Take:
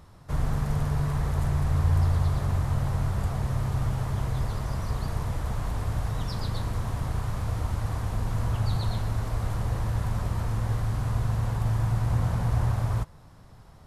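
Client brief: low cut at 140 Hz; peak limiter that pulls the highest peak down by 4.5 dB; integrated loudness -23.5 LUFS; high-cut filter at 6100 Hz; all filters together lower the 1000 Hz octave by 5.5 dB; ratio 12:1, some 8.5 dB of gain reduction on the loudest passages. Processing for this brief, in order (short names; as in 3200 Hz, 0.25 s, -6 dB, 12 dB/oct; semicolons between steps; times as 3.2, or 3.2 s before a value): HPF 140 Hz; LPF 6100 Hz; bell 1000 Hz -7 dB; compressor 12:1, threshold -35 dBFS; gain +18 dB; limiter -14.5 dBFS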